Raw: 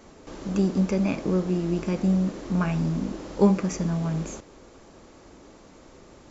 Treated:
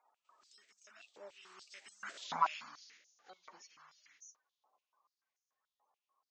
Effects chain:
spectral magnitudes quantised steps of 30 dB
source passing by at 0:02.24, 29 m/s, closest 1.7 metres
high-pass on a step sequencer 6.9 Hz 860–6,100 Hz
level +3 dB

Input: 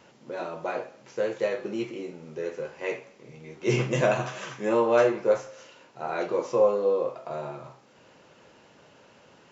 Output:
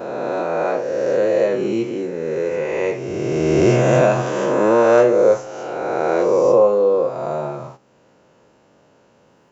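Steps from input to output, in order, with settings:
peak hold with a rise ahead of every peak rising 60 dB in 2.15 s
noise gate −47 dBFS, range −11 dB
parametric band 3,000 Hz −8.5 dB 2.4 octaves
in parallel at −3 dB: downward compressor, threshold −29 dBFS, peak gain reduction 13.5 dB
on the sum: level +5.5 dB

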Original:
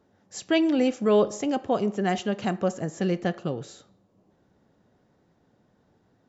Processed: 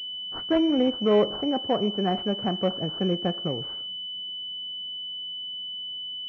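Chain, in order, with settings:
switching amplifier with a slow clock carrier 3,000 Hz

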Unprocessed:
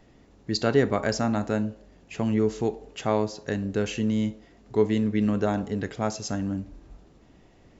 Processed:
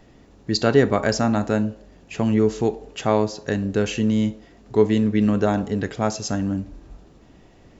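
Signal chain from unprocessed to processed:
notch filter 2,100 Hz, Q 28
level +5 dB

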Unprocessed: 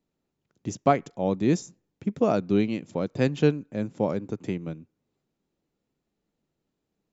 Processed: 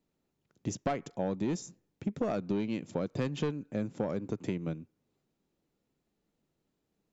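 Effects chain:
soft clipping −16.5 dBFS, distortion −12 dB
downward compressor 10 to 1, threshold −28 dBFS, peak gain reduction 9 dB

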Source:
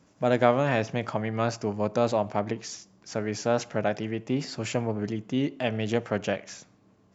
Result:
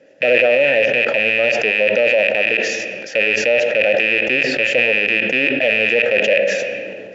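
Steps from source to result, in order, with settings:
loose part that buzzes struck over −38 dBFS, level −12 dBFS
parametric band 95 Hz −4.5 dB 1.2 octaves
in parallel at −9.5 dB: soft clipping −21.5 dBFS, distortion −8 dB
on the sum: formant filter e
on a send at −12.5 dB: convolution reverb RT60 1.1 s, pre-delay 3 ms
on the sum: boost into a limiter +27 dB
level that may fall only so fast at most 29 dB per second
level −5.5 dB

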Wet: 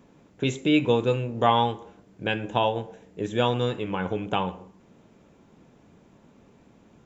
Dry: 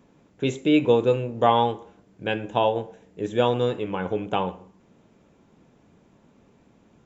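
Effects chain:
dynamic equaliser 480 Hz, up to −6 dB, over −31 dBFS, Q 0.73
level +2 dB

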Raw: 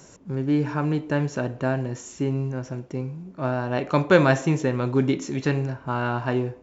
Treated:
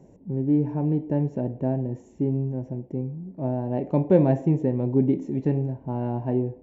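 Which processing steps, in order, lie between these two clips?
drawn EQ curve 140 Hz 0 dB, 200 Hz +3 dB, 870 Hz −5 dB, 1,300 Hz −29 dB, 1,900 Hz −16 dB, 4,700 Hz −27 dB, 7,200 Hz −24 dB

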